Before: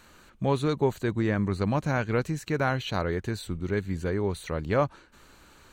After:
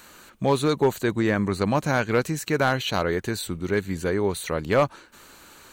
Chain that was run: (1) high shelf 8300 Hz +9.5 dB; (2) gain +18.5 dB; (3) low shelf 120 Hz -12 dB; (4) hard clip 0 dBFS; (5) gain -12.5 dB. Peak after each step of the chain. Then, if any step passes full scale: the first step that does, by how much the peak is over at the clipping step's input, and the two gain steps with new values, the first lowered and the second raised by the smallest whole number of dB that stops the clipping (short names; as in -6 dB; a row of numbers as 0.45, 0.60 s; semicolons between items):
-11.5, +7.0, +6.0, 0.0, -12.5 dBFS; step 2, 6.0 dB; step 2 +12.5 dB, step 5 -6.5 dB